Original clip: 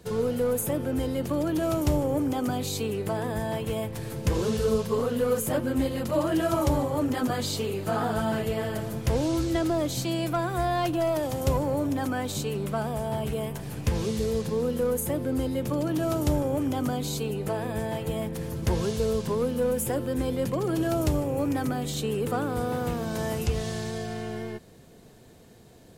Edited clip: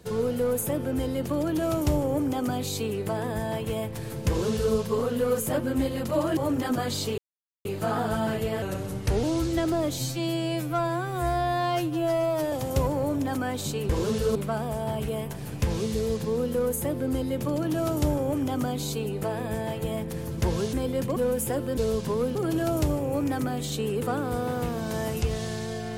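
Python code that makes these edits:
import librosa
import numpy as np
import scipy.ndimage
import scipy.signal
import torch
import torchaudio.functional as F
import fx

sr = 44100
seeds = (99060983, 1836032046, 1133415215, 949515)

y = fx.edit(x, sr, fx.duplicate(start_s=4.28, length_s=0.46, to_s=12.6),
    fx.cut(start_s=6.37, length_s=0.52),
    fx.insert_silence(at_s=7.7, length_s=0.47),
    fx.speed_span(start_s=8.67, length_s=0.54, speed=0.88),
    fx.stretch_span(start_s=9.96, length_s=1.27, factor=2.0),
    fx.swap(start_s=18.98, length_s=0.58, other_s=20.17, other_length_s=0.43), tone=tone)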